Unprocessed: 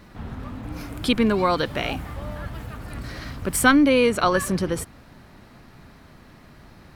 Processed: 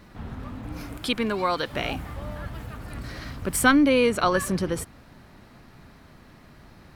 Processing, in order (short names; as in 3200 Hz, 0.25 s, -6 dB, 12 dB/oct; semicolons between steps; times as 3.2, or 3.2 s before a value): 0.97–1.73 low shelf 370 Hz -8 dB; gain -2 dB